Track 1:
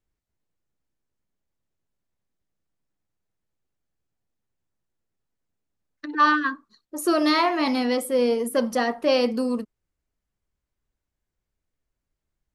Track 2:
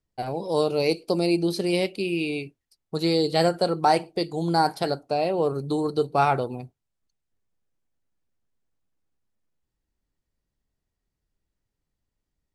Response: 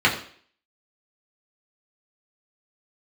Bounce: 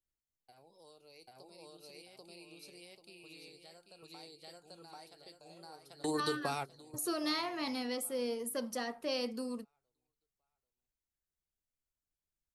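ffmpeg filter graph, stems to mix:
-filter_complex "[0:a]volume=-15dB,asplit=2[link_01][link_02];[1:a]agate=range=-33dB:threshold=-36dB:ratio=3:detection=peak,lowshelf=frequency=500:gain=-8.5,acompressor=threshold=-35dB:ratio=2.5,adelay=300,volume=1.5dB,asplit=2[link_03][link_04];[link_04]volume=-23.5dB[link_05];[link_02]apad=whole_len=566628[link_06];[link_03][link_06]sidechaingate=range=-27dB:threshold=-55dB:ratio=16:detection=peak[link_07];[link_05]aecho=0:1:789|1578|2367|3156|3945:1|0.36|0.13|0.0467|0.0168[link_08];[link_01][link_07][link_08]amix=inputs=3:normalize=0,highshelf=frequency=4100:gain=11.5,acrossover=split=420|3000[link_09][link_10][link_11];[link_10]acompressor=threshold=-36dB:ratio=6[link_12];[link_09][link_12][link_11]amix=inputs=3:normalize=0"

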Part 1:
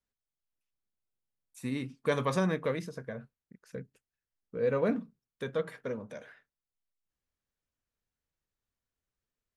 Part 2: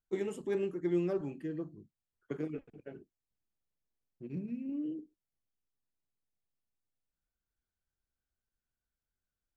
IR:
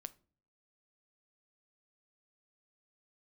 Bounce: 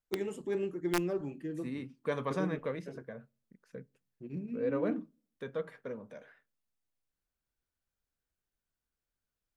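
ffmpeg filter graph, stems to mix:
-filter_complex "[0:a]highpass=130,highshelf=frequency=3700:gain=-9,volume=-6.5dB,asplit=2[link_01][link_02];[link_02]volume=-6dB[link_03];[1:a]aeval=exprs='(mod(13.3*val(0)+1,2)-1)/13.3':channel_layout=same,volume=-2.5dB,asplit=2[link_04][link_05];[link_05]volume=-6.5dB[link_06];[2:a]atrim=start_sample=2205[link_07];[link_03][link_06]amix=inputs=2:normalize=0[link_08];[link_08][link_07]afir=irnorm=-1:irlink=0[link_09];[link_01][link_04][link_09]amix=inputs=3:normalize=0"

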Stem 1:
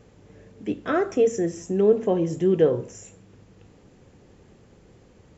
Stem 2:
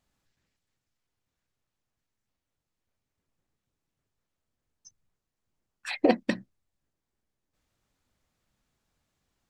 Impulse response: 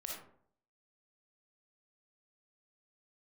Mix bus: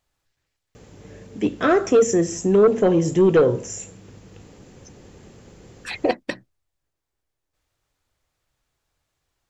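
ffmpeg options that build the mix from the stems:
-filter_complex "[0:a]highshelf=frequency=4900:gain=7.5,aeval=exprs='0.447*sin(PI/2*1.78*val(0)/0.447)':channel_layout=same,adelay=750,volume=-2.5dB[link_01];[1:a]equalizer=frequency=210:width=2.3:gain=-13,volume=3dB[link_02];[link_01][link_02]amix=inputs=2:normalize=0"

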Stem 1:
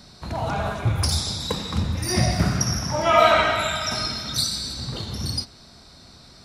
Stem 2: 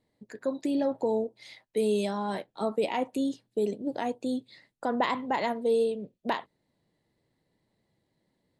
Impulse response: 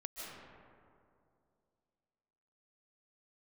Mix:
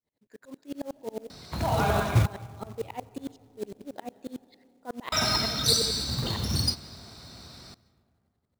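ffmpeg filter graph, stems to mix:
-filter_complex "[0:a]highpass=frequency=48:width=0.5412,highpass=frequency=48:width=1.3066,adelay=1300,volume=0dB,asplit=3[link_01][link_02][link_03];[link_01]atrim=end=2.26,asetpts=PTS-STARTPTS,afade=type=out:start_time=2.256:duration=0.004:curve=hsin[link_04];[link_02]atrim=start=2.26:end=5.12,asetpts=PTS-STARTPTS,volume=0[link_05];[link_03]atrim=start=5.12,asetpts=PTS-STARTPTS,afade=type=in:duration=0.004:curve=hsin[link_06];[link_04][link_05][link_06]concat=n=3:v=0:a=1,asplit=2[link_07][link_08];[link_08]volume=-16dB[link_09];[1:a]aeval=exprs='val(0)*pow(10,-32*if(lt(mod(-11*n/s,1),2*abs(-11)/1000),1-mod(-11*n/s,1)/(2*abs(-11)/1000),(mod(-11*n/s,1)-2*abs(-11)/1000)/(1-2*abs(-11)/1000))/20)':channel_layout=same,volume=-2dB,asplit=2[link_10][link_11];[link_11]volume=-16.5dB[link_12];[2:a]atrim=start_sample=2205[link_13];[link_09][link_12]amix=inputs=2:normalize=0[link_14];[link_14][link_13]afir=irnorm=-1:irlink=0[link_15];[link_07][link_10][link_15]amix=inputs=3:normalize=0,acrusher=bits=4:mode=log:mix=0:aa=0.000001"

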